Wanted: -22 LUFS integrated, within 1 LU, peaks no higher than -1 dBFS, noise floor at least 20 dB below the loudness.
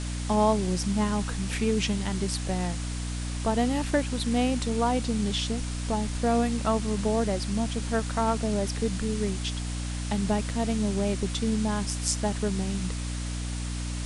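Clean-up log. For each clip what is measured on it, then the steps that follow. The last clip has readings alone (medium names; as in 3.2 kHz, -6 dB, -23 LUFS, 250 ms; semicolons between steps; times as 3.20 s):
hum 60 Hz; highest harmonic 300 Hz; hum level -30 dBFS; noise floor -32 dBFS; noise floor target -48 dBFS; loudness -28.0 LUFS; peak level -7.5 dBFS; loudness target -22.0 LUFS
-> hum notches 60/120/180/240/300 Hz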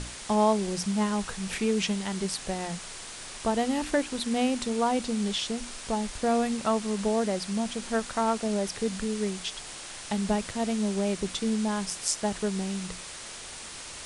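hum not found; noise floor -42 dBFS; noise floor target -49 dBFS
-> noise reduction 7 dB, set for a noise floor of -42 dBFS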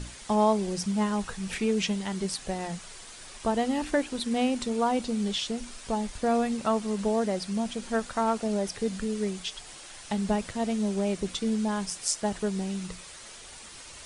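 noise floor -46 dBFS; noise floor target -49 dBFS
-> noise reduction 6 dB, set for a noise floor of -46 dBFS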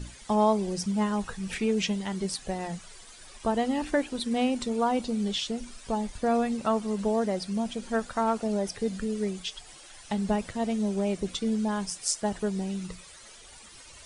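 noise floor -50 dBFS; loudness -29.0 LUFS; peak level -8.5 dBFS; loudness target -22.0 LUFS
-> trim +7 dB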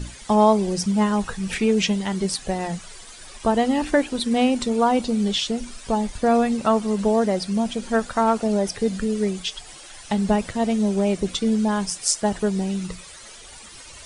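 loudness -22.0 LUFS; peak level -1.5 dBFS; noise floor -43 dBFS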